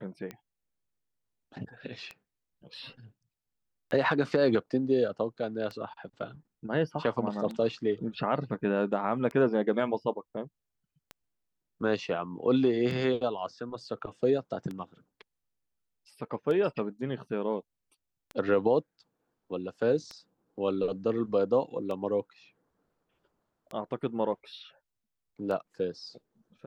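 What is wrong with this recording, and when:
scratch tick 33 1/3 rpm −25 dBFS

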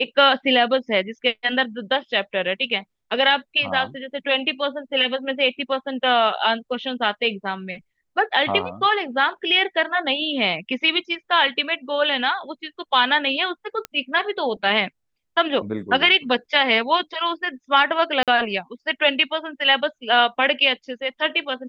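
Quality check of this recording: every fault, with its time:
0:13.85: click −13 dBFS
0:18.23–0:18.28: drop-out 47 ms

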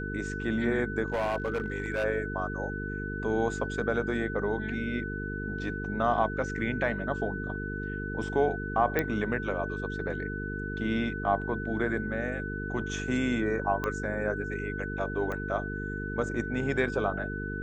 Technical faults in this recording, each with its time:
mains buzz 50 Hz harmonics 9 −36 dBFS
whistle 1,500 Hz −37 dBFS
0:01.06–0:02.05: clipping −25 dBFS
0:08.99: click −13 dBFS
0:13.84: click −17 dBFS
0:15.32: click −23 dBFS

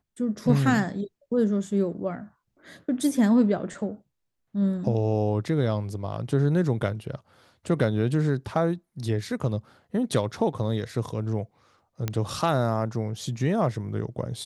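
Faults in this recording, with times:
0:12.08: click −13 dBFS

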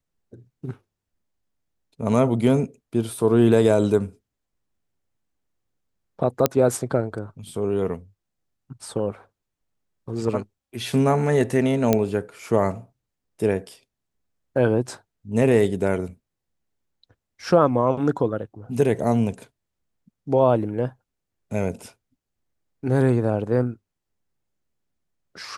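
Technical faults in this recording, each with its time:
0:06.46: click −3 dBFS
0:11.93: click −5 dBFS

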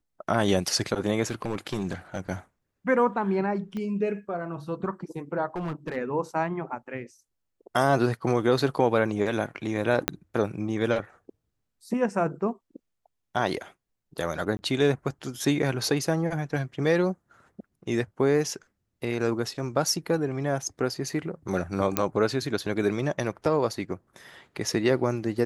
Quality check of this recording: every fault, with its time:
0:01.26–0:02.20: clipping −23.5 dBFS
0:03.77: click −23 dBFS
0:05.56–0:05.97: clipping −27.5 dBFS
0:10.08: click −5 dBFS
0:14.57–0:14.59: drop-out 20 ms
0:21.97: click −6 dBFS

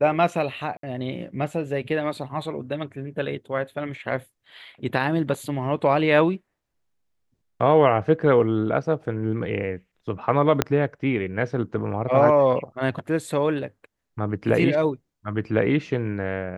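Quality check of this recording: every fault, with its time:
0:00.77–0:00.83: drop-out 63 ms
0:10.62: click −4 dBFS

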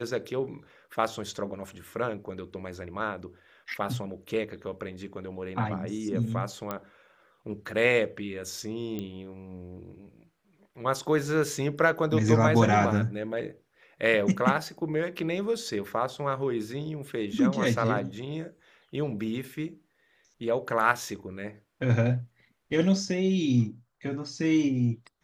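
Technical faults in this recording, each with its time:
0:06.71: click −17 dBFS
0:08.99: click −21 dBFS

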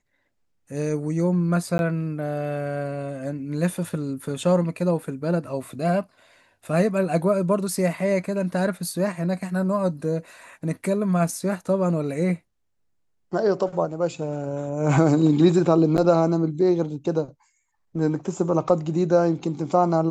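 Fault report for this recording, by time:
0:01.78–0:01.79: drop-out 11 ms
0:15.97–0:15.98: drop-out 9.3 ms

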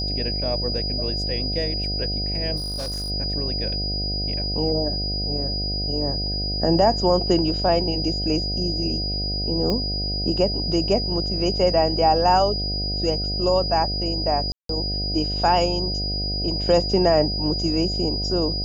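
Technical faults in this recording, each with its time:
mains buzz 50 Hz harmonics 15 −28 dBFS
whistle 4,900 Hz −26 dBFS
0:02.56–0:03.11: clipping −25.5 dBFS
0:09.70: click −12 dBFS
0:14.52–0:14.69: drop-out 173 ms

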